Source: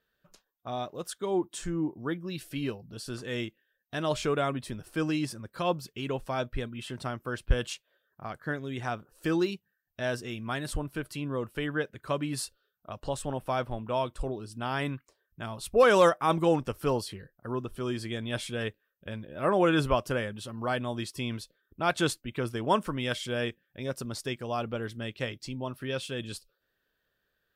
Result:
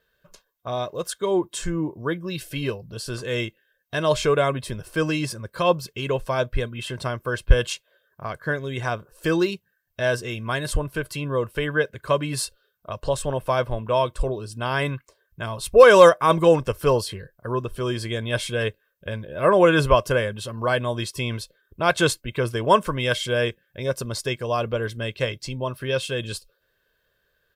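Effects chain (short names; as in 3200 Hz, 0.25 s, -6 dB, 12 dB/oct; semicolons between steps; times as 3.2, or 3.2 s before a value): comb 1.9 ms, depth 49%; gain +7 dB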